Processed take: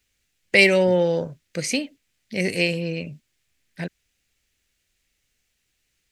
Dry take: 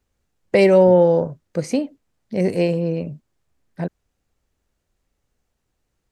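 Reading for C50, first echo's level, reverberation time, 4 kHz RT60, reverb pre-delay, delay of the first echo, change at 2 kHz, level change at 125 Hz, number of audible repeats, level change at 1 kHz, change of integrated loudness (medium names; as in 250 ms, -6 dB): no reverb, no echo, no reverb, no reverb, no reverb, no echo, +10.0 dB, -5.0 dB, no echo, -7.5 dB, -3.0 dB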